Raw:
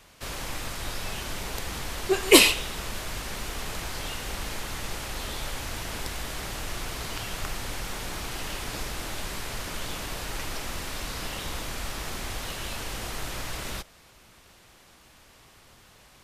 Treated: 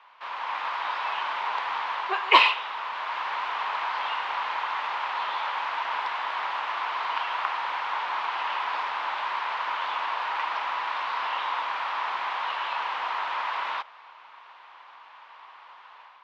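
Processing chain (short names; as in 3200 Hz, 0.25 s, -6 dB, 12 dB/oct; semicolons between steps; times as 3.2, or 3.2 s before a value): LPF 3300 Hz 24 dB/oct; AGC gain up to 6 dB; resonant high-pass 970 Hz, resonance Q 5; gain -2.5 dB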